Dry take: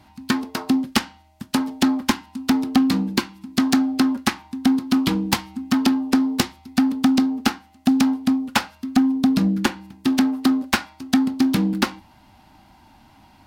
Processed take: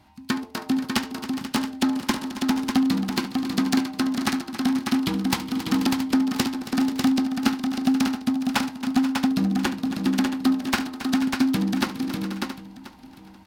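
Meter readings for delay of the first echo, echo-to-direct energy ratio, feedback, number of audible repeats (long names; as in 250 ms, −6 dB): 71 ms, −2.5 dB, repeats not evenly spaced, 13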